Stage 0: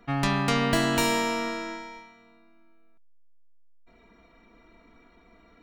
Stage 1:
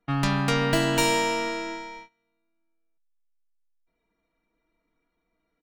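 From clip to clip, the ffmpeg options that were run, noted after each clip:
-af "agate=range=0.0891:threshold=0.00501:ratio=16:detection=peak,aecho=1:1:6.4:0.46"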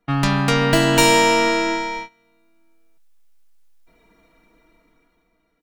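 -af "dynaudnorm=f=280:g=9:m=5.62,volume=1.88"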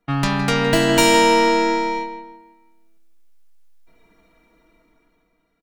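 -filter_complex "[0:a]asplit=2[s0][s1];[s1]adelay=163,lowpass=f=2600:p=1,volume=0.376,asplit=2[s2][s3];[s3]adelay=163,lowpass=f=2600:p=1,volume=0.43,asplit=2[s4][s5];[s5]adelay=163,lowpass=f=2600:p=1,volume=0.43,asplit=2[s6][s7];[s7]adelay=163,lowpass=f=2600:p=1,volume=0.43,asplit=2[s8][s9];[s9]adelay=163,lowpass=f=2600:p=1,volume=0.43[s10];[s0][s2][s4][s6][s8][s10]amix=inputs=6:normalize=0,volume=0.891"

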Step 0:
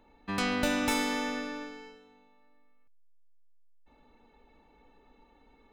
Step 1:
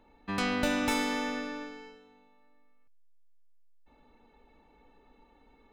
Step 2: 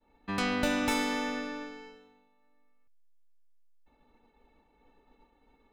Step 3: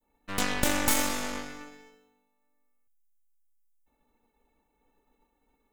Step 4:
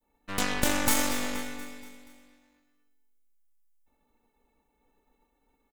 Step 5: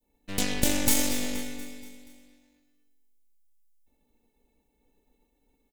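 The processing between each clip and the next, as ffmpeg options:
-af "highshelf=f=5900:g=-4"
-af "agate=range=0.0224:threshold=0.00158:ratio=3:detection=peak"
-af "aexciter=amount=2.3:drive=9.2:freq=6200,aeval=exprs='0.251*(cos(1*acos(clip(val(0)/0.251,-1,1)))-cos(1*PI/2))+0.126*(cos(4*acos(clip(val(0)/0.251,-1,1)))-cos(4*PI/2))+0.0631*(cos(6*acos(clip(val(0)/0.251,-1,1)))-cos(6*PI/2))+0.02*(cos(7*acos(clip(val(0)/0.251,-1,1)))-cos(7*PI/2))+0.0501*(cos(8*acos(clip(val(0)/0.251,-1,1)))-cos(8*PI/2))':c=same"
-af "aecho=1:1:238|476|714|952|1190:0.211|0.11|0.0571|0.0297|0.0155"
-af "equalizer=f=1200:t=o:w=1.2:g=-14.5,volume=1.41"

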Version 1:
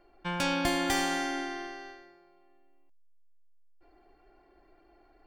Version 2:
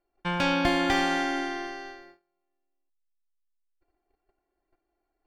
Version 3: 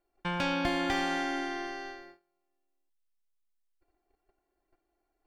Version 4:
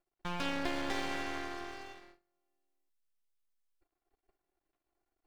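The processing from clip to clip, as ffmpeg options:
-filter_complex "[0:a]acrossover=split=4500[s0][s1];[s1]acompressor=threshold=0.002:ratio=4:attack=1:release=60[s2];[s0][s2]amix=inputs=2:normalize=0,agate=range=0.0708:threshold=0.00158:ratio=16:detection=peak,volume=1.68"
-af "acompressor=threshold=0.0158:ratio=1.5"
-af "aeval=exprs='max(val(0),0)':c=same,volume=0.794"

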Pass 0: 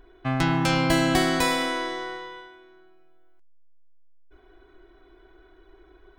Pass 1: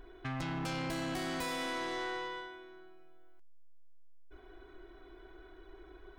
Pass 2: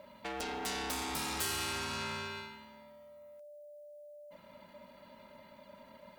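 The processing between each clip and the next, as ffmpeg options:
-af "acompressor=threshold=0.0355:ratio=10,asoftclip=type=tanh:threshold=0.0224"
-af "crystalizer=i=3.5:c=0,aeval=exprs='val(0)*sin(2*PI*590*n/s)':c=same"

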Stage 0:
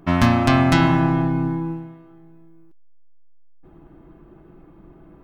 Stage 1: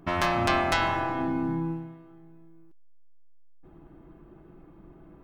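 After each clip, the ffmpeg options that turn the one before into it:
-af "afftfilt=real='re*lt(hypot(re,im),0.708)':imag='im*lt(hypot(re,im),0.708)':win_size=1024:overlap=0.75,volume=0.631"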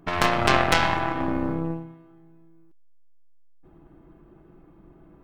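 -af "aeval=exprs='0.376*(cos(1*acos(clip(val(0)/0.376,-1,1)))-cos(1*PI/2))+0.0944*(cos(4*acos(clip(val(0)/0.376,-1,1)))-cos(4*PI/2))+0.0266*(cos(7*acos(clip(val(0)/0.376,-1,1)))-cos(7*PI/2))':c=same,volume=1.78"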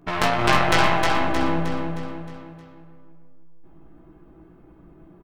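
-filter_complex "[0:a]flanger=delay=16:depth=2.5:speed=1.7,asplit=2[s0][s1];[s1]aecho=0:1:311|622|933|1244|1555|1866:0.631|0.297|0.139|0.0655|0.0308|0.0145[s2];[s0][s2]amix=inputs=2:normalize=0,volume=1.5"

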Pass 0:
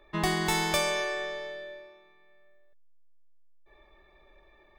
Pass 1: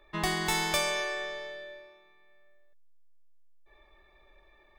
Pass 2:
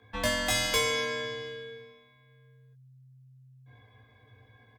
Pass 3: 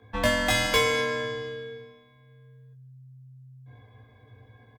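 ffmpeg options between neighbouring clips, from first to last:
-af "equalizer=f=220:w=0.31:g=-4.5"
-filter_complex "[0:a]afreqshift=-130,asplit=2[s0][s1];[s1]adelay=18,volume=0.631[s2];[s0][s2]amix=inputs=2:normalize=0"
-filter_complex "[0:a]asplit=2[s0][s1];[s1]adynamicsmooth=sensitivity=3.5:basefreq=1400,volume=1[s2];[s0][s2]amix=inputs=2:normalize=0,aecho=1:1:161:0.0891"

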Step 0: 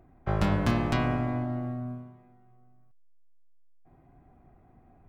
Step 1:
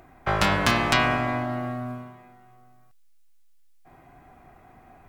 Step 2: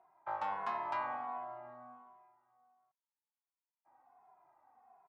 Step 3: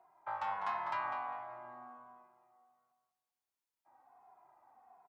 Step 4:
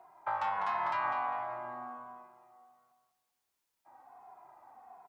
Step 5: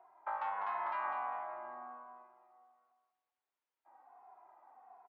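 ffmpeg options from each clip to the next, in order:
-filter_complex "[0:a]asplit=2[s0][s1];[s1]acompressor=threshold=0.0178:ratio=6,volume=0.891[s2];[s0][s2]amix=inputs=2:normalize=0,tiltshelf=f=660:g=-8.5,volume=1.68"
-filter_complex "[0:a]bandpass=f=910:t=q:w=5.4:csg=0,asplit=2[s0][s1];[s1]adelay=2.4,afreqshift=-1.4[s2];[s0][s2]amix=inputs=2:normalize=1,volume=0.794"
-filter_complex "[0:a]acrossover=split=150|730[s0][s1][s2];[s1]acompressor=threshold=0.00158:ratio=6[s3];[s0][s3][s2]amix=inputs=3:normalize=0,asplit=2[s4][s5];[s5]adelay=200,lowpass=f=3700:p=1,volume=0.473,asplit=2[s6][s7];[s7]adelay=200,lowpass=f=3700:p=1,volume=0.27,asplit=2[s8][s9];[s9]adelay=200,lowpass=f=3700:p=1,volume=0.27[s10];[s4][s6][s8][s10]amix=inputs=4:normalize=0,volume=1.19"
-af "alimiter=level_in=2.66:limit=0.0631:level=0:latency=1:release=124,volume=0.376,volume=2.66"
-af "highpass=330,lowpass=2400,volume=0.596"

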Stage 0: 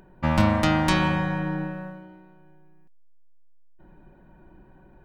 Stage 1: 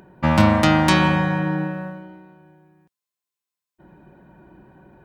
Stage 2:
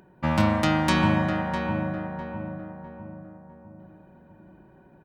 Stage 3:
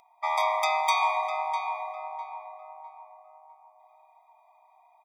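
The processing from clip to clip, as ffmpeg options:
-af "highpass=81,volume=1.88"
-filter_complex "[0:a]asplit=2[s0][s1];[s1]adelay=653,lowpass=f=1200:p=1,volume=0.668,asplit=2[s2][s3];[s3]adelay=653,lowpass=f=1200:p=1,volume=0.49,asplit=2[s4][s5];[s5]adelay=653,lowpass=f=1200:p=1,volume=0.49,asplit=2[s6][s7];[s7]adelay=653,lowpass=f=1200:p=1,volume=0.49,asplit=2[s8][s9];[s9]adelay=653,lowpass=f=1200:p=1,volume=0.49,asplit=2[s10][s11];[s11]adelay=653,lowpass=f=1200:p=1,volume=0.49[s12];[s0][s2][s4][s6][s8][s10][s12]amix=inputs=7:normalize=0,volume=0.473"
-filter_complex "[0:a]acrossover=split=4100[s0][s1];[s1]aeval=exprs='(mod(16.8*val(0)+1,2)-1)/16.8':c=same[s2];[s0][s2]amix=inputs=2:normalize=0,afftfilt=real='re*eq(mod(floor(b*sr/1024/640),2),1)':imag='im*eq(mod(floor(b*sr/1024/640),2),1)':win_size=1024:overlap=0.75,volume=1.5"

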